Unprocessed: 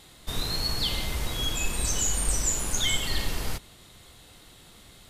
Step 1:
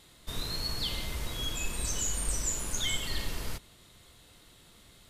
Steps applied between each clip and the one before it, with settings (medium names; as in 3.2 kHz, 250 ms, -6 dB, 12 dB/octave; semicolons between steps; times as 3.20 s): band-stop 780 Hz, Q 12; trim -5.5 dB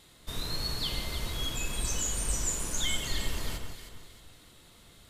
echo whose repeats swap between lows and highs 156 ms, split 1.6 kHz, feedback 60%, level -4.5 dB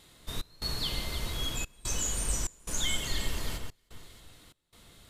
trance gate "xx.xxxxx.x" 73 bpm -24 dB